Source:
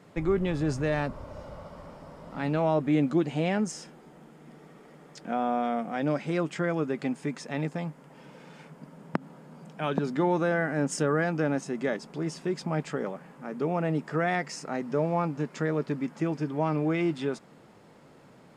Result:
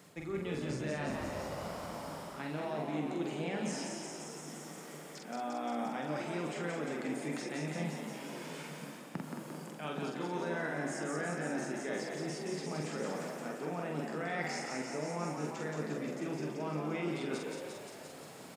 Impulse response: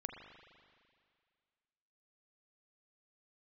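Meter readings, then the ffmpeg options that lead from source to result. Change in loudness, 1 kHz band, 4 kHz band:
−9.5 dB, −7.5 dB, −2.0 dB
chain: -filter_complex "[0:a]areverse,acompressor=threshold=-37dB:ratio=6,areverse,highpass=74,asplit=9[link_01][link_02][link_03][link_04][link_05][link_06][link_07][link_08][link_09];[link_02]adelay=174,afreqshift=60,volume=-6dB[link_10];[link_03]adelay=348,afreqshift=120,volume=-10.3dB[link_11];[link_04]adelay=522,afreqshift=180,volume=-14.6dB[link_12];[link_05]adelay=696,afreqshift=240,volume=-18.9dB[link_13];[link_06]adelay=870,afreqshift=300,volume=-23.2dB[link_14];[link_07]adelay=1044,afreqshift=360,volume=-27.5dB[link_15];[link_08]adelay=1218,afreqshift=420,volume=-31.8dB[link_16];[link_09]adelay=1392,afreqshift=480,volume=-36.1dB[link_17];[link_01][link_10][link_11][link_12][link_13][link_14][link_15][link_16][link_17]amix=inputs=9:normalize=0,acrossover=split=3200[link_18][link_19];[link_19]acompressor=threshold=-60dB:ratio=4:attack=1:release=60[link_20];[link_18][link_20]amix=inputs=2:normalize=0,asplit=2[link_21][link_22];[1:a]atrim=start_sample=2205,adelay=46[link_23];[link_22][link_23]afir=irnorm=-1:irlink=0,volume=0.5dB[link_24];[link_21][link_24]amix=inputs=2:normalize=0,crystalizer=i=4:c=0,volume=-1.5dB"

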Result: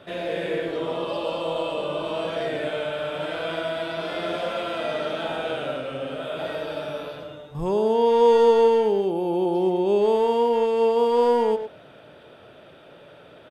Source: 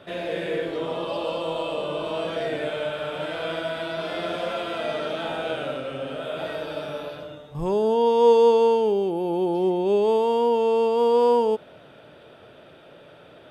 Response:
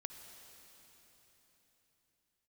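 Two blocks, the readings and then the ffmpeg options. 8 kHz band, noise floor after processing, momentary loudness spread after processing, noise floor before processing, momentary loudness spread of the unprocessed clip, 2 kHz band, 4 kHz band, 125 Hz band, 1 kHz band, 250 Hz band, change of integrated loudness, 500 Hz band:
can't be measured, −48 dBFS, 13 LU, −49 dBFS, 13 LU, +0.5 dB, +0.5 dB, 0.0 dB, +0.5 dB, +0.5 dB, +0.5 dB, +0.5 dB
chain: -filter_complex "[0:a]asplit=2[link_01][link_02];[link_02]adelay=110,highpass=300,lowpass=3400,asoftclip=type=hard:threshold=-17dB,volume=-8dB[link_03];[link_01][link_03]amix=inputs=2:normalize=0"

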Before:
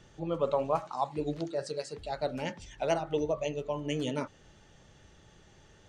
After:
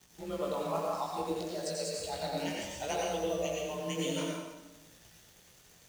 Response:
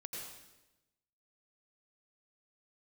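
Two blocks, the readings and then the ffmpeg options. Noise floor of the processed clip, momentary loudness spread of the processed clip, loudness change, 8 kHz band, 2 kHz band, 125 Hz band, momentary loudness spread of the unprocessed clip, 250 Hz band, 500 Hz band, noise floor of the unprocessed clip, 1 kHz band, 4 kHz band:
−60 dBFS, 6 LU, −2.0 dB, +8.5 dB, +0.5 dB, −3.5 dB, 8 LU, −2.0 dB, −2.5 dB, −59 dBFS, −2.0 dB, +3.5 dB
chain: -filter_complex "[0:a]bandreject=frequency=107.1:width_type=h:width=4,bandreject=frequency=214.2:width_type=h:width=4,bandreject=frequency=321.3:width_type=h:width=4,bandreject=frequency=428.4:width_type=h:width=4,bandreject=frequency=535.5:width_type=h:width=4,asplit=2[link_01][link_02];[link_02]acompressor=threshold=-42dB:ratio=6,volume=3dB[link_03];[link_01][link_03]amix=inputs=2:normalize=0,crystalizer=i=3:c=0,acrusher=bits=8:dc=4:mix=0:aa=0.000001,afreqshift=26,aeval=exprs='sgn(val(0))*max(abs(val(0))-0.00316,0)':channel_layout=same,flanger=delay=17.5:depth=7:speed=0.62[link_04];[1:a]atrim=start_sample=2205[link_05];[link_04][link_05]afir=irnorm=-1:irlink=0"

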